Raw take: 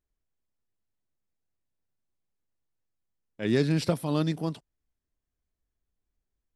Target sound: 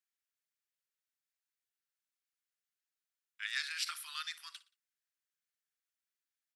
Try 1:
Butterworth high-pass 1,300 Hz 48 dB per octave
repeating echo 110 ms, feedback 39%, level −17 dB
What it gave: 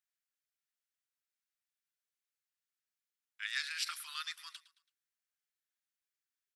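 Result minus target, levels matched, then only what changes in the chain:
echo 51 ms late
change: repeating echo 59 ms, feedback 39%, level −17 dB

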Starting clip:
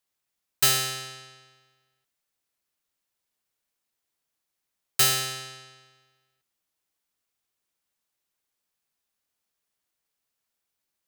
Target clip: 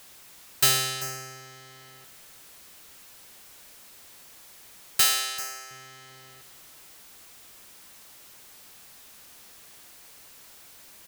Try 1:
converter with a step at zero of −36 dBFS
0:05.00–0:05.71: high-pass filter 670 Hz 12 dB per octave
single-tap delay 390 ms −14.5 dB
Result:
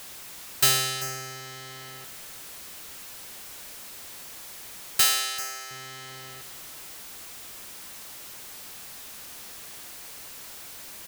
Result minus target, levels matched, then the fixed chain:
converter with a step at zero: distortion +8 dB
converter with a step at zero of −44 dBFS
0:05.00–0:05.71: high-pass filter 670 Hz 12 dB per octave
single-tap delay 390 ms −14.5 dB

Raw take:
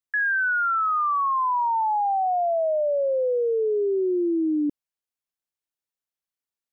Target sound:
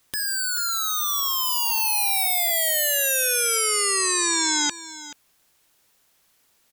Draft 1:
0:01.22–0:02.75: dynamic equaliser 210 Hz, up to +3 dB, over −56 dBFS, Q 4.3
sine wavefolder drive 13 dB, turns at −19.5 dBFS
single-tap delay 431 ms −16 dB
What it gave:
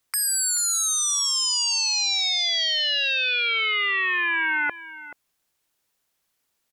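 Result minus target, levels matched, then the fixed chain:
sine wavefolder: distortion +10 dB
0:01.22–0:02.75: dynamic equaliser 210 Hz, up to +3 dB, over −56 dBFS, Q 4.3
sine wavefolder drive 24 dB, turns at −19.5 dBFS
single-tap delay 431 ms −16 dB

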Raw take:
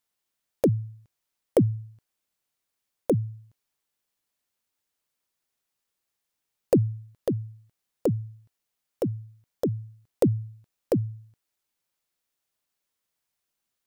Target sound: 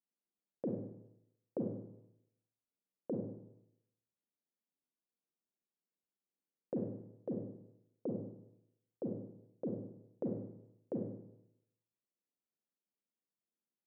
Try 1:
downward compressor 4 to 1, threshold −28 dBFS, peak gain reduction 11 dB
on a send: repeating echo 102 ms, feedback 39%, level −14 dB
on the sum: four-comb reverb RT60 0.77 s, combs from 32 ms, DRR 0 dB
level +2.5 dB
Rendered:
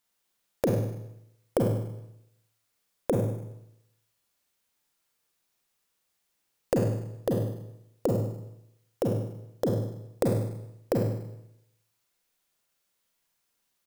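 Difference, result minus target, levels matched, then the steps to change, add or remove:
250 Hz band −3.5 dB
add after downward compressor: four-pole ladder band-pass 280 Hz, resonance 30%

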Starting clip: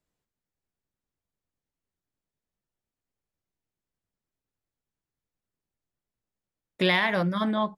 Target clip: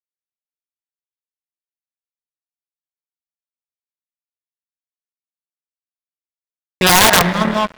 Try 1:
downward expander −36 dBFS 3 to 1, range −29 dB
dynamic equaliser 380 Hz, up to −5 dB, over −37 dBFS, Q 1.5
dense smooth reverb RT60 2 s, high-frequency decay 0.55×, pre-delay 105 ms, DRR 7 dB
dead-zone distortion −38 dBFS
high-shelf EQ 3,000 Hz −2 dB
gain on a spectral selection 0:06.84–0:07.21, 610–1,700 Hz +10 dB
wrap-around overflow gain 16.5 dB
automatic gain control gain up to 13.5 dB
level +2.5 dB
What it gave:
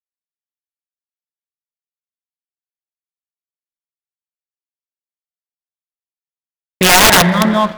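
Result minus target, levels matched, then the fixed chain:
dead-zone distortion: distortion −10 dB
downward expander −36 dBFS 3 to 1, range −29 dB
dynamic equaliser 380 Hz, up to −5 dB, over −37 dBFS, Q 1.5
dense smooth reverb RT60 2 s, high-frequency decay 0.55×, pre-delay 105 ms, DRR 7 dB
dead-zone distortion −28.5 dBFS
high-shelf EQ 3,000 Hz −2 dB
gain on a spectral selection 0:06.84–0:07.21, 610–1,700 Hz +10 dB
wrap-around overflow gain 16.5 dB
automatic gain control gain up to 13.5 dB
level +2.5 dB

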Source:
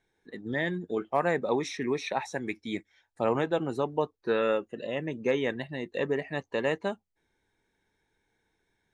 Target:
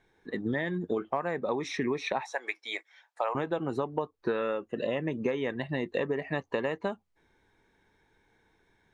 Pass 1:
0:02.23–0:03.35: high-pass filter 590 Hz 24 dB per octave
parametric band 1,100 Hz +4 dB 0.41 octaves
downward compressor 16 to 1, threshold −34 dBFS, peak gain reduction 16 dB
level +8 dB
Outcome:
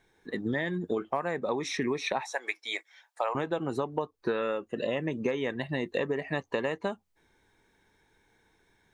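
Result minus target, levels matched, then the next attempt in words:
4,000 Hz band +2.5 dB
0:02.23–0:03.35: high-pass filter 590 Hz 24 dB per octave
parametric band 1,100 Hz +4 dB 0.41 octaves
downward compressor 16 to 1, threshold −34 dBFS, peak gain reduction 16 dB
low-pass filter 3,600 Hz 6 dB per octave
level +8 dB

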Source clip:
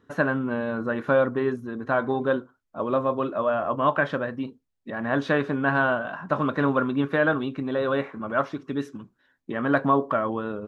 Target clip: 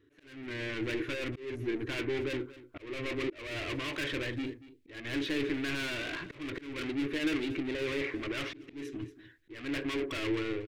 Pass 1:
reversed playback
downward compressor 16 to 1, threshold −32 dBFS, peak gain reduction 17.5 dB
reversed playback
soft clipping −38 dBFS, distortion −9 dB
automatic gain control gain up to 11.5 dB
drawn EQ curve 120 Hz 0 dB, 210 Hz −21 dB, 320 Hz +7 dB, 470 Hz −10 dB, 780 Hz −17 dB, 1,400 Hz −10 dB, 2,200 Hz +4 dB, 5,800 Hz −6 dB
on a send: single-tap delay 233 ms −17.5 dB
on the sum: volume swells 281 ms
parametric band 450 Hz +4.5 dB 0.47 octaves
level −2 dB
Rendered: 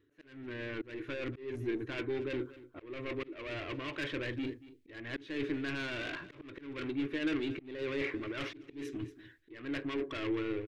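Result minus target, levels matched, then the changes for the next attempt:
downward compressor: peak gain reduction +9 dB
change: downward compressor 16 to 1, threshold −22.5 dBFS, peak gain reduction 8.5 dB

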